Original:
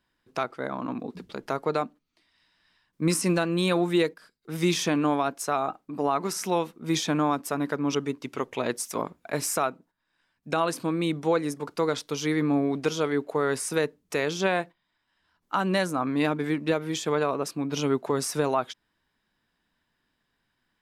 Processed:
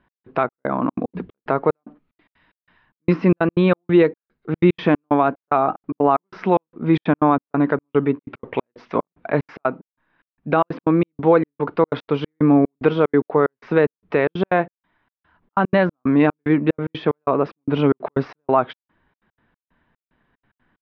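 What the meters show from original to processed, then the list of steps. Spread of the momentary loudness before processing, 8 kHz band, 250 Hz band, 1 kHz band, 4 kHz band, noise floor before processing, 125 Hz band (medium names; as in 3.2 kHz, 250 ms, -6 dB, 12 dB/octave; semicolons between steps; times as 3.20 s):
8 LU, under -30 dB, +8.0 dB, +7.0 dB, -5.0 dB, -77 dBFS, +8.0 dB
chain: in parallel at -2 dB: peak limiter -24.5 dBFS, peak gain reduction 11.5 dB; on the sum: trance gate "x..xxx..xxx.x.x" 185 bpm -60 dB; Gaussian low-pass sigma 3.6 samples; trim +8 dB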